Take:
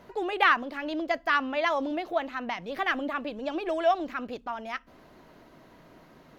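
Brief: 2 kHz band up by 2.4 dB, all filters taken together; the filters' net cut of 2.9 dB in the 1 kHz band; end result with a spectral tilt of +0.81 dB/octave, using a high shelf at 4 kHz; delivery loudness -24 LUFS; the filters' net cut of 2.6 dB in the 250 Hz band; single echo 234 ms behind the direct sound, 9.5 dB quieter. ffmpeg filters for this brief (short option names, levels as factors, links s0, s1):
-af "equalizer=f=250:t=o:g=-3,equalizer=f=1000:t=o:g=-5.5,equalizer=f=2000:t=o:g=3.5,highshelf=f=4000:g=6.5,aecho=1:1:234:0.335,volume=1.68"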